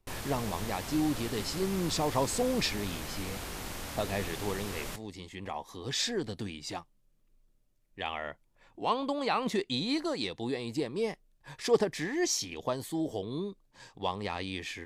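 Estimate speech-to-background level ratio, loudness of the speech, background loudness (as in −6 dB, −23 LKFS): 6.0 dB, −33.5 LKFS, −39.5 LKFS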